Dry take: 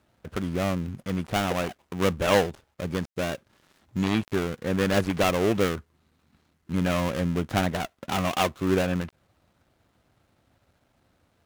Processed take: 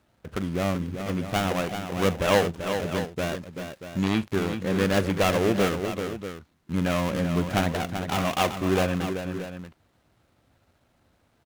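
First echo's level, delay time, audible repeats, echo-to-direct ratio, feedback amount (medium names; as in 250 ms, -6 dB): -17.0 dB, 41 ms, 3, -6.0 dB, no regular repeats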